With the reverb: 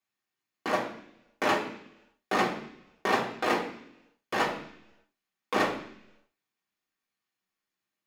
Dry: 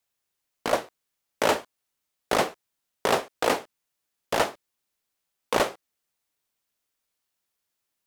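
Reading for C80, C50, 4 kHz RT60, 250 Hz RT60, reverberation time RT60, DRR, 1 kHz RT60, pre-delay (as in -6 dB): 11.0 dB, 8.0 dB, 0.95 s, 0.90 s, 0.70 s, -5.0 dB, 0.70 s, 3 ms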